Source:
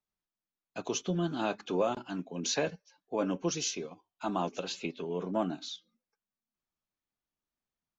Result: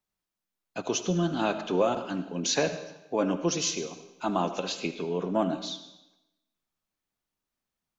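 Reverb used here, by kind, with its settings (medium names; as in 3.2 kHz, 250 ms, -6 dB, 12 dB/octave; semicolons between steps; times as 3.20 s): algorithmic reverb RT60 0.96 s, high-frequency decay 0.95×, pre-delay 35 ms, DRR 10.5 dB; trim +4.5 dB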